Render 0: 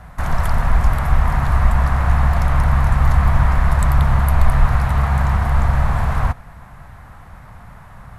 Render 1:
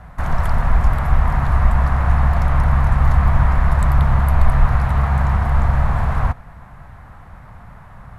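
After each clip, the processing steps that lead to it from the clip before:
high-shelf EQ 3,600 Hz −8 dB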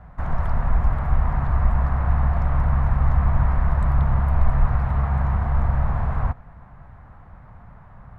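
low-pass filter 1,300 Hz 6 dB per octave
level −4.5 dB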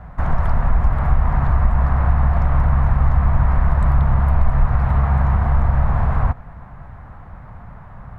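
downward compressor 2 to 1, threshold −20 dBFS, peak gain reduction 5.5 dB
level +7 dB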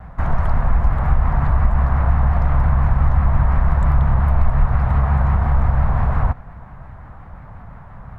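pitch vibrato 5.7 Hz 84 cents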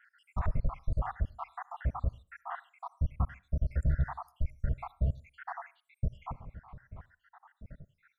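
time-frequency cells dropped at random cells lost 81%
brickwall limiter −12.5 dBFS, peak gain reduction 7.5 dB
on a send at −21.5 dB: convolution reverb RT60 0.35 s, pre-delay 58 ms
on the sum: level −7.5 dB

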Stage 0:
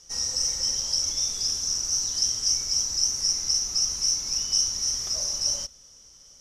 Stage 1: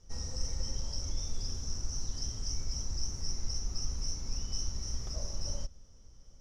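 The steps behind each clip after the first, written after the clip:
spectral tilt −4 dB per octave
level −7 dB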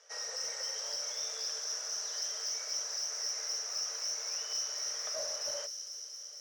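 Chebyshev high-pass with heavy ripple 430 Hz, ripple 9 dB
mid-hump overdrive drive 13 dB, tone 7,100 Hz, clips at −34 dBFS
delay with a high-pass on its return 229 ms, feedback 80%, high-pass 5,100 Hz, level −5 dB
level +7.5 dB

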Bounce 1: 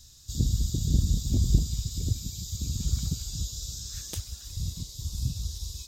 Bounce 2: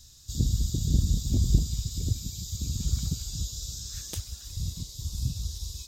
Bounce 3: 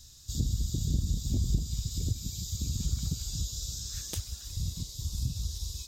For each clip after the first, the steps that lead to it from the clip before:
no processing that can be heard
downward compressor 2 to 1, threshold −28 dBFS, peak gain reduction 8 dB

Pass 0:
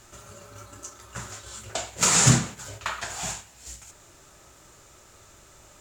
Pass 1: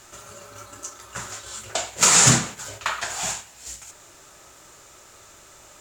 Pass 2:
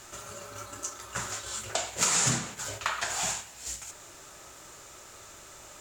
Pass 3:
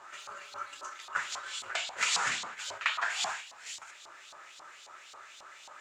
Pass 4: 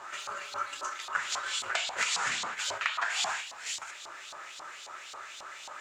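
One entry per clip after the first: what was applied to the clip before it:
low-shelf EQ 250 Hz −9 dB; level +5 dB
downward compressor 2.5 to 1, threshold −28 dBFS, peak gain reduction 12 dB
auto-filter band-pass saw up 3.7 Hz 890–4,200 Hz; level +7 dB
downward compressor 12 to 1, threshold −33 dBFS, peak gain reduction 10 dB; level +6.5 dB

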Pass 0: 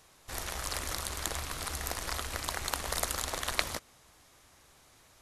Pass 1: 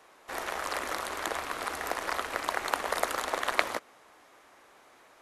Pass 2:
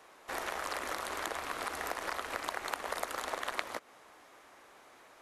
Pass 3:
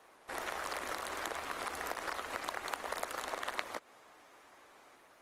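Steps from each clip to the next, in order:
three-way crossover with the lows and the highs turned down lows −23 dB, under 260 Hz, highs −13 dB, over 2,500 Hz; level +7.5 dB
downward compressor 3 to 1, threshold −34 dBFS, peak gain reduction 12 dB
level −2 dB; Opus 24 kbit/s 48,000 Hz

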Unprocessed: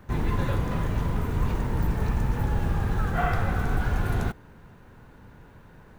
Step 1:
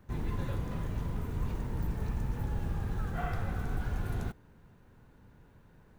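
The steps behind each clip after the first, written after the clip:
parametric band 1,300 Hz −4 dB 2.8 octaves
level −8 dB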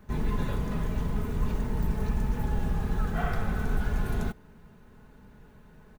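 comb filter 4.7 ms, depth 47%
level +5 dB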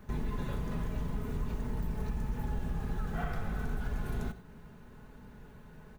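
reverb whose tail is shaped and stops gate 120 ms flat, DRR 12 dB
downward compressor 2.5 to 1, threshold −35 dBFS, peak gain reduction 9.5 dB
level +1 dB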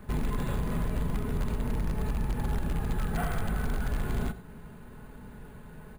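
in parallel at −10 dB: wrap-around overflow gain 27 dB
on the sum: bad sample-rate conversion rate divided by 4×, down filtered, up hold
level +3 dB

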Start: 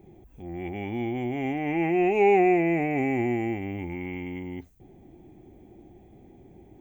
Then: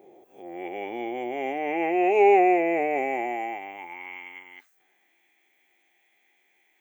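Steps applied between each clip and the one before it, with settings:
peak hold with a rise ahead of every peak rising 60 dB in 0.36 s
high-pass filter sweep 510 Hz → 2,000 Hz, 0:02.86–0:05.22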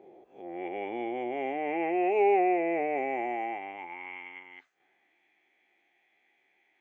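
in parallel at +2.5 dB: downward compressor, threshold −28 dBFS, peak gain reduction 13.5 dB
on the sum: high-frequency loss of the air 180 metres
level −8 dB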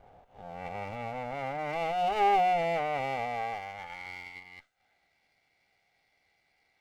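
lower of the sound and its delayed copy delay 1.4 ms

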